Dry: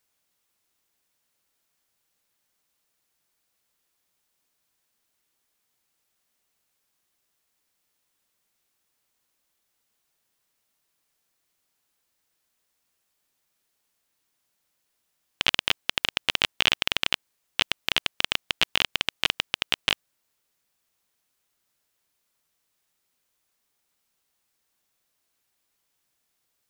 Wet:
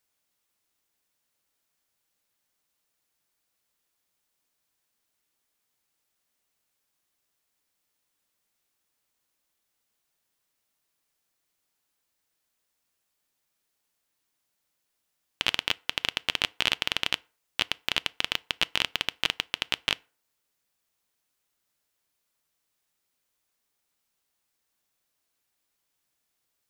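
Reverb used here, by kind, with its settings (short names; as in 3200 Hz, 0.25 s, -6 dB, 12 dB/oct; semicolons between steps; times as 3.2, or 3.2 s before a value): FDN reverb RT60 0.39 s, low-frequency decay 0.75×, high-frequency decay 0.65×, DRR 19.5 dB; gain -3 dB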